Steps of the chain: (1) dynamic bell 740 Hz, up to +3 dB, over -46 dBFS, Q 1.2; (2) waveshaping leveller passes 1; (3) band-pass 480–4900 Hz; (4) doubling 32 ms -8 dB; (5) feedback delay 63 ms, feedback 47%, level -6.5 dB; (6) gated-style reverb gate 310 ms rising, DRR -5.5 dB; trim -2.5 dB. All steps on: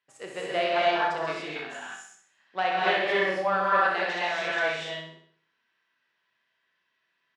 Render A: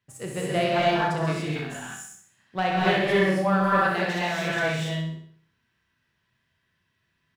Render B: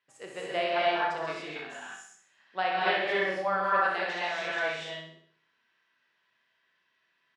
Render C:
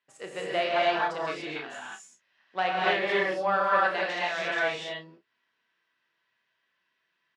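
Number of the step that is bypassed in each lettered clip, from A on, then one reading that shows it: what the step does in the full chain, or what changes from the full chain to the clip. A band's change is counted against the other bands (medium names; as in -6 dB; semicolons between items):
3, 125 Hz band +16.5 dB; 2, loudness change -3.0 LU; 5, loudness change -1.0 LU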